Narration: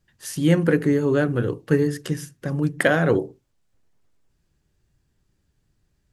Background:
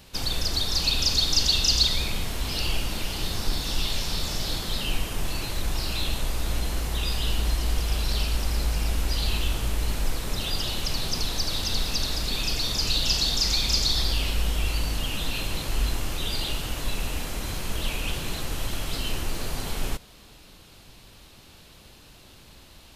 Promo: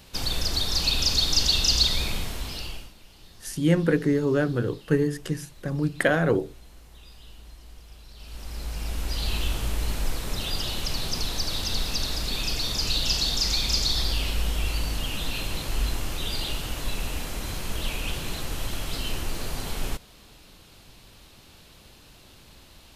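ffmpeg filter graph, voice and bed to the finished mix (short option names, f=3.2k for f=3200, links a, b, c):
-filter_complex "[0:a]adelay=3200,volume=-3dB[a];[1:a]volume=20.5dB,afade=t=out:st=2.1:d=0.83:silence=0.0841395,afade=t=in:st=8.16:d=1.26:silence=0.0944061[b];[a][b]amix=inputs=2:normalize=0"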